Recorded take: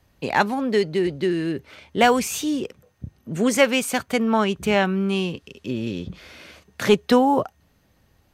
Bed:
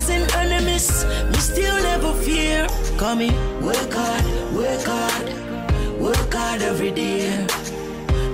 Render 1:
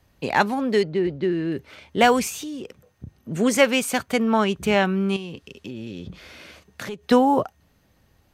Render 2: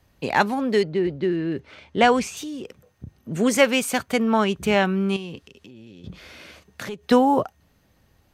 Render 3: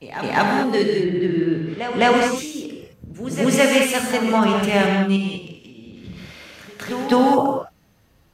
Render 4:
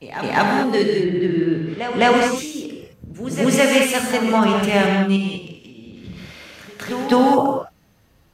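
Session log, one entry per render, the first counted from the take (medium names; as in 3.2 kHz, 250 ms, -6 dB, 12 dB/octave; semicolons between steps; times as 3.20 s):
0.83–1.52 s: tape spacing loss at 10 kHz 20 dB; 2.29–3.16 s: compression, threshold -30 dBFS; 5.16–7.11 s: compression, threshold -30 dBFS
1.36–2.37 s: distance through air 60 m; 5.43–6.04 s: compression 2.5:1, threshold -46 dBFS
reverse echo 208 ms -11.5 dB; gated-style reverb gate 240 ms flat, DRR 0 dB
trim +1 dB; peak limiter -3 dBFS, peak gain reduction 1.5 dB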